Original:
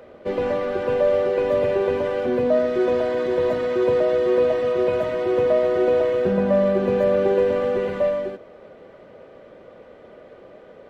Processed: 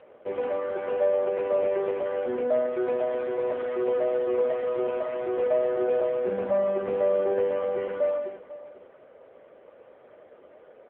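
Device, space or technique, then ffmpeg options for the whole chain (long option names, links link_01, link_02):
satellite phone: -af "highpass=360,lowpass=3100,aecho=1:1:493:0.15,volume=-3.5dB" -ar 8000 -c:a libopencore_amrnb -b:a 6700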